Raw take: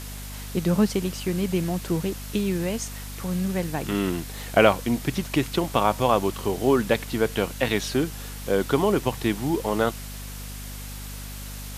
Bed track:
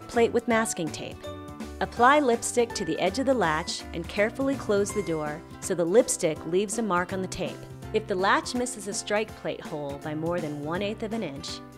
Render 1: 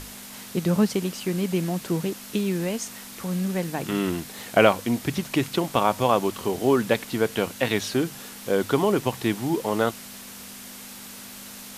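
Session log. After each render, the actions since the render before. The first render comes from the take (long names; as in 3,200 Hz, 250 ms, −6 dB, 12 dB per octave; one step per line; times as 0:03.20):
mains-hum notches 50/100/150 Hz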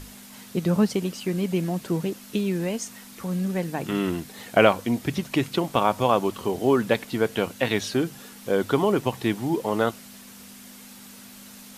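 broadband denoise 6 dB, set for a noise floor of −41 dBFS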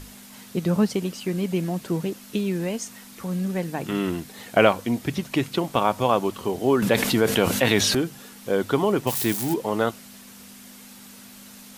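0:06.82–0:07.95: envelope flattener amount 70%
0:09.07–0:09.54: spike at every zero crossing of −19.5 dBFS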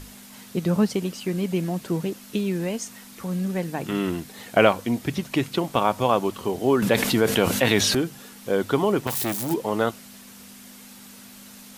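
0:09.07–0:09.51: saturating transformer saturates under 1,300 Hz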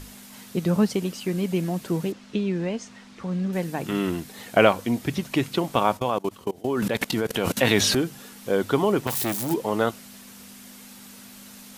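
0:02.12–0:03.53: high-frequency loss of the air 120 metres
0:05.97–0:07.57: output level in coarse steps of 24 dB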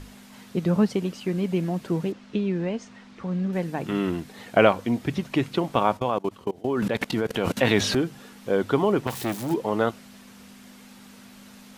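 low-pass filter 3,100 Hz 6 dB per octave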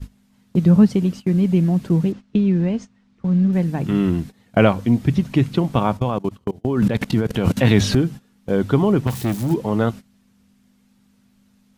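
bass and treble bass +14 dB, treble +2 dB
noise gate −29 dBFS, range −18 dB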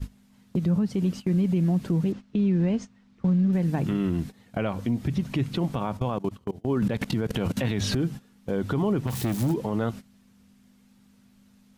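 downward compressor 3 to 1, threshold −20 dBFS, peak gain reduction 9.5 dB
brickwall limiter −17 dBFS, peak gain reduction 8 dB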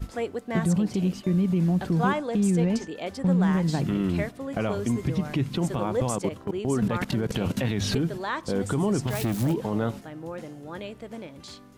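mix in bed track −8 dB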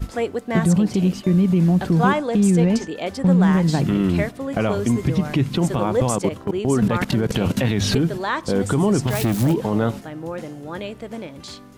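level +6.5 dB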